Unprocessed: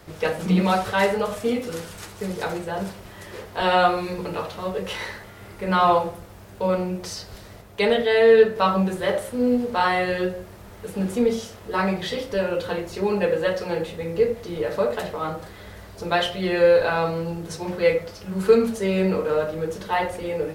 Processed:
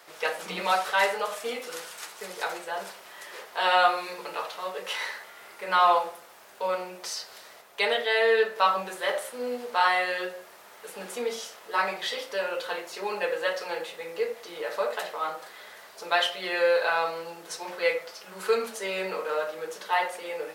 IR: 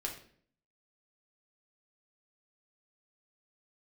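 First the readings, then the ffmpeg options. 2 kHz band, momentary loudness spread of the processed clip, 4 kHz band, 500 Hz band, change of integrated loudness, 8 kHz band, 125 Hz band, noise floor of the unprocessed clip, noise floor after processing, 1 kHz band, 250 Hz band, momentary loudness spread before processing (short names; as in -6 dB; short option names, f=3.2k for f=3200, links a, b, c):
0.0 dB, 17 LU, 0.0 dB, -8.0 dB, -5.0 dB, 0.0 dB, under -20 dB, -43 dBFS, -50 dBFS, -2.0 dB, -19.0 dB, 16 LU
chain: -af "highpass=740"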